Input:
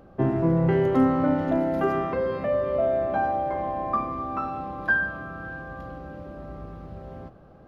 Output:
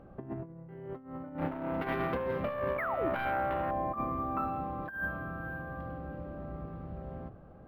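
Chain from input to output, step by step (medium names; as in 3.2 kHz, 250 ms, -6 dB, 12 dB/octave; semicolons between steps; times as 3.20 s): 1.38–3.71 s: self-modulated delay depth 0.51 ms; tone controls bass +4 dB, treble -14 dB; hum notches 50/100/150/200/250/300/350/400 Hz; compressor with a negative ratio -27 dBFS, ratio -0.5; 2.78–3.09 s: painted sound fall 270–2400 Hz -28 dBFS; decimation joined by straight lines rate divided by 3×; trim -7 dB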